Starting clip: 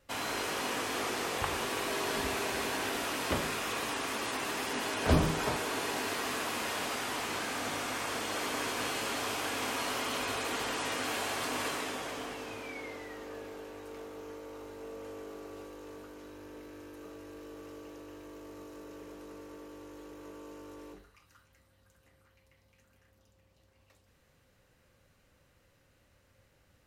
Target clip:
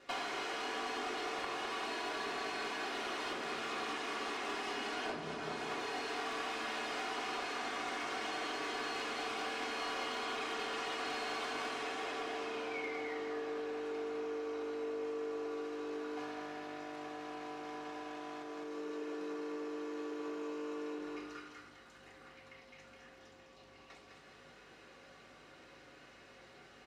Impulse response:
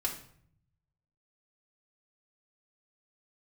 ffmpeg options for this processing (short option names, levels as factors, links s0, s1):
-filter_complex "[0:a]asettb=1/sr,asplit=3[s0][s1][s2];[s0]atrim=end=16.174[s3];[s1]atrim=start=16.17:end=18.43,asetpts=PTS-STARTPTS,afade=t=in:d=0.004:c=qsin,afade=t=out:st=2.256:d=0.004:c=qsin,aeval=exprs='0.015*(cos(1*acos(clip(val(0)/0.015,-1,1)))-cos(1*PI/2))+0.0075*(cos(6*acos(clip(val(0)/0.015,-1,1)))-cos(6*PI/2))':c=same[s4];[s2]atrim=start=18.426[s5];[s3][s4]acrossfade=d=0.004:c1=hsin:c2=qsin[s6];[s6][s5]acrossfade=d=0.004:c1=qsin:c2=hsin,aecho=1:1:207|414|621|828:0.531|0.165|0.051|0.0158,acompressor=threshold=0.00316:ratio=6,aeval=exprs='val(0)+0.000398*(sin(2*PI*50*n/s)+sin(2*PI*2*50*n/s)/2+sin(2*PI*3*50*n/s)/3+sin(2*PI*4*50*n/s)/4+sin(2*PI*5*50*n/s)/5)':c=same,highpass=280,lowpass=5000[s7];[1:a]atrim=start_sample=2205[s8];[s7][s8]afir=irnorm=-1:irlink=0,aeval=exprs='clip(val(0),-1,0.00794)':c=same,volume=2.66"